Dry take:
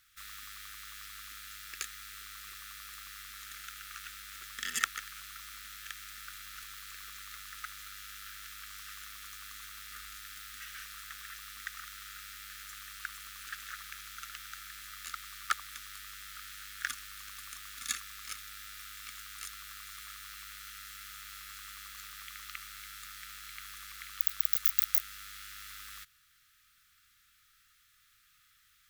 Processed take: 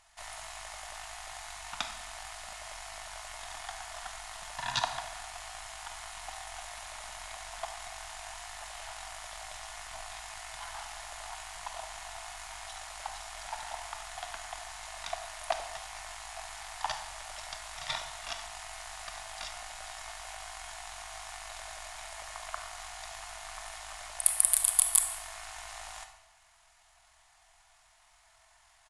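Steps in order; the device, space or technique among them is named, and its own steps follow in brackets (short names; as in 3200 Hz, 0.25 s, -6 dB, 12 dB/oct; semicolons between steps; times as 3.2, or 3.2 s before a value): monster voice (pitch shift -11 st; low shelf 200 Hz +7.5 dB; reverb RT60 1.0 s, pre-delay 26 ms, DRR 6.5 dB); gain +3 dB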